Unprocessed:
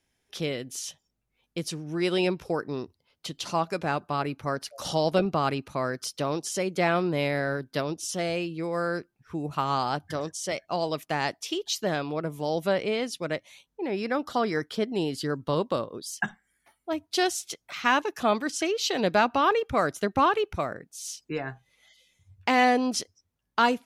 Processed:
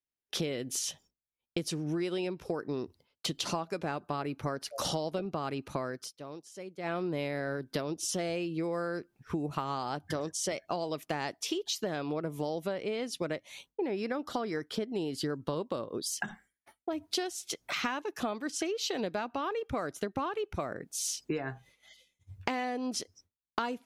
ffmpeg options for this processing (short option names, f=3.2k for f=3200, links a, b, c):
-filter_complex "[0:a]asettb=1/sr,asplit=3[a][b][c];[a]atrim=end=16.074[d];[b]atrim=start=16.07:end=17.15,asetpts=PTS-STARTPTS,afade=t=in:d=0.004:c=qsin,afade=t=out:st=1.076:d=0.004:c=qsin,acompressor=threshold=-35dB:ratio=2.5:attack=3.2:release=140:knee=1:detection=peak[e];[c]atrim=start=17.146[f];[d][e]acrossfade=d=0.004:c1=hsin:c2=qsin[g];[g][f]acrossfade=d=0.004:c1=qsin:c2=hsin,asplit=3[h][i][j];[h]atrim=end=6.13,asetpts=PTS-STARTPTS,afade=t=out:st=5.71:d=0.42:silence=0.0668344[k];[i]atrim=start=6.13:end=6.83,asetpts=PTS-STARTPTS,volume=-23.5dB[l];[j]atrim=start=6.83,asetpts=PTS-STARTPTS,afade=t=in:d=0.42:silence=0.0668344[m];[k][l][m]concat=n=3:v=0:a=1,agate=range=-33dB:threshold=-54dB:ratio=3:detection=peak,equalizer=f=350:t=o:w=1.4:g=3.5,acompressor=threshold=-36dB:ratio=16,volume=6dB"